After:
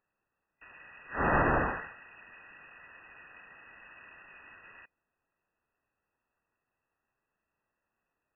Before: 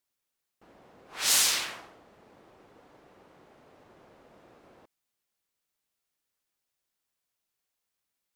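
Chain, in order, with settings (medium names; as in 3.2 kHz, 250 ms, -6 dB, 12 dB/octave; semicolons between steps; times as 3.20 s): FFT band-reject 210–730 Hz; frequency inversion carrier 2.7 kHz; trim +8.5 dB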